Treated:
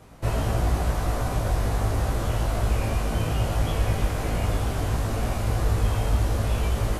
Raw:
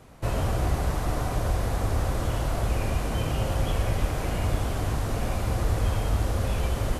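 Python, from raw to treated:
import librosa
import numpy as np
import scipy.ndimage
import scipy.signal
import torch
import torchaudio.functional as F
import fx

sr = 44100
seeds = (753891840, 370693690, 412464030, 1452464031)

y = fx.doubler(x, sr, ms=18.0, db=-4.0)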